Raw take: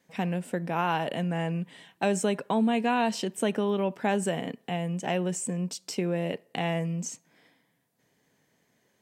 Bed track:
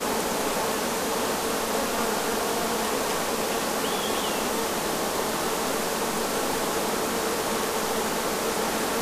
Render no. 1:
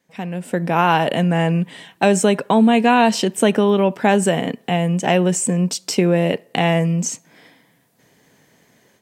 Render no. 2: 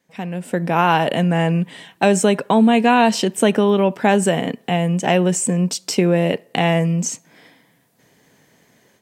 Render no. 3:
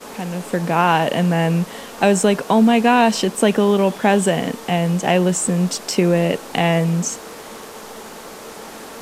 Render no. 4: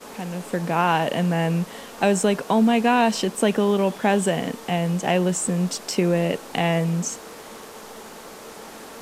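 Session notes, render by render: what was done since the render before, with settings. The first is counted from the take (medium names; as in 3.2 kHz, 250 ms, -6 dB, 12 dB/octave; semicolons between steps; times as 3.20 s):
level rider gain up to 14 dB
no audible change
add bed track -9 dB
trim -4.5 dB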